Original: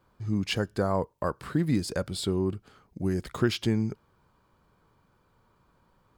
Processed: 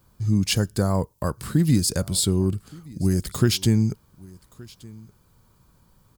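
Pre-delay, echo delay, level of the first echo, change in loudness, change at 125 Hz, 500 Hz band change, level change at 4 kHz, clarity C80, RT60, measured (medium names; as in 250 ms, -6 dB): no reverb, 1172 ms, -23.0 dB, +6.5 dB, +9.0 dB, +1.5 dB, +7.5 dB, no reverb, no reverb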